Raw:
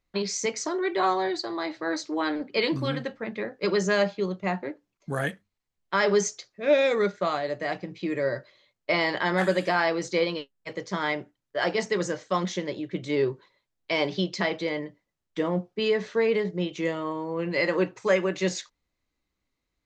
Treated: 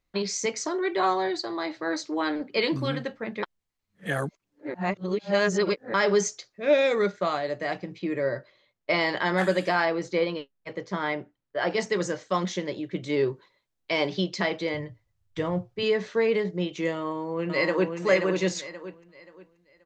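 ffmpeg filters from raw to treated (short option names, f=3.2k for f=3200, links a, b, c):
-filter_complex "[0:a]asettb=1/sr,asplit=3[a][b][c];[a]atrim=end=7.994[d];[b]atrim=start=7.99:end=8.9,asetpts=PTS-STARTPTS,afade=t=in:d=0.004:c=qsin,afade=t=out:st=0.906:d=0.004:c=qsin,highshelf=f=4.3k:g=-9[e];[c]atrim=start=8.896[f];[d][e]acrossfade=d=0.004:c1=hsin:c2=qsin[g];[g][f]acrossfade=d=0.004:c1=qsin:c2=hsin,asettb=1/sr,asplit=3[h][i][j];[h]atrim=end=9.854[k];[i]atrim=start=9.85:end=11.71,asetpts=PTS-STARTPTS,afade=t=in:d=0.004:c=qsin,afade=t=out:st=1.856:d=0.004:c=qsin,lowpass=f=2.5k:p=1[l];[j]atrim=start=11.706[m];[k][l]acrossfade=d=0.004:c1=hsin:c2=qsin[n];[n][m]acrossfade=d=0.004:c1=qsin:c2=hsin,asettb=1/sr,asplit=3[o][p][q];[o]atrim=end=14.744[r];[p]atrim=start=14.74:end=15.83,asetpts=PTS-STARTPTS,afade=t=in:d=0.004:c=qsin,afade=t=out:st=1.086:d=0.004:c=qsin,lowshelf=f=150:t=q:w=3:g=13.5[s];[q]atrim=start=15.826[t];[r][s]acrossfade=d=0.004:c1=hsin:c2=qsin[u];[u][t]acrossfade=d=0.004:c1=qsin:c2=hsin,asplit=2[v][w];[w]afade=t=in:st=16.96:d=0.01,afade=t=out:st=17.97:d=0.01,aecho=0:1:530|1060|1590|2120:0.595662|0.178699|0.0536096|0.0160829[x];[v][x]amix=inputs=2:normalize=0,asplit=3[y][z][aa];[y]atrim=end=3.432[ab];[z]atrim=start=3.428:end=5.942,asetpts=PTS-STARTPTS,areverse[ac];[aa]atrim=start=5.938[ad];[ab][ac]acrossfade=d=0.004:c1=hsin:c2=hsin[ae];[ae][ad]acrossfade=d=0.004:c1=hsin:c2=hsin"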